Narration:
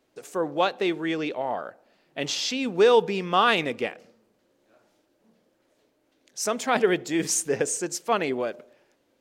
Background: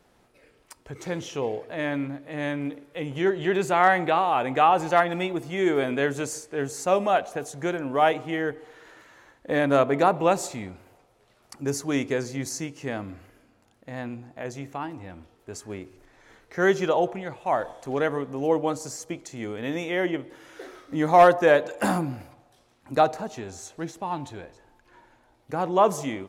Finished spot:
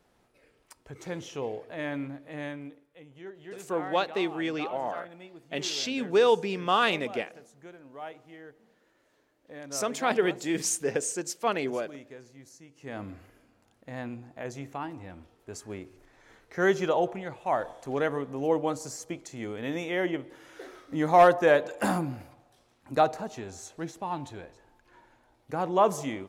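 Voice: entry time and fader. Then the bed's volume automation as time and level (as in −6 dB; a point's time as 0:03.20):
3.35 s, −3.5 dB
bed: 0:02.35 −5.5 dB
0:03.06 −20.5 dB
0:12.63 −20.5 dB
0:13.03 −3 dB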